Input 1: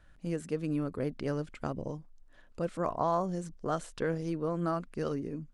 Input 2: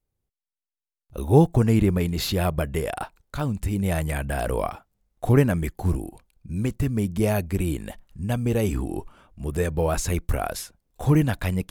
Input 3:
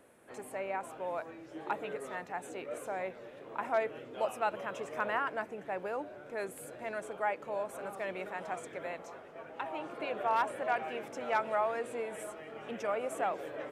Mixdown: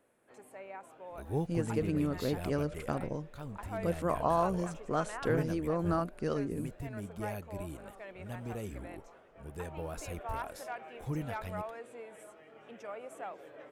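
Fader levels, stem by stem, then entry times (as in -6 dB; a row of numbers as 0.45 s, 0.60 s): +0.5 dB, -17.5 dB, -9.5 dB; 1.25 s, 0.00 s, 0.00 s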